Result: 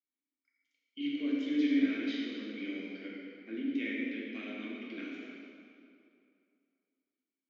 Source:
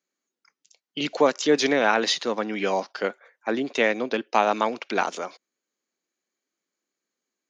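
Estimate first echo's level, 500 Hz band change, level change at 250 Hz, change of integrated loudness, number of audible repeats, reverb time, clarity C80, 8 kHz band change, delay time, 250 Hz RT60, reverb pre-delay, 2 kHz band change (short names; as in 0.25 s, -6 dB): none, -21.5 dB, -3.0 dB, -11.0 dB, none, 2.5 s, -0.5 dB, n/a, none, 2.5 s, 3 ms, -14.5 dB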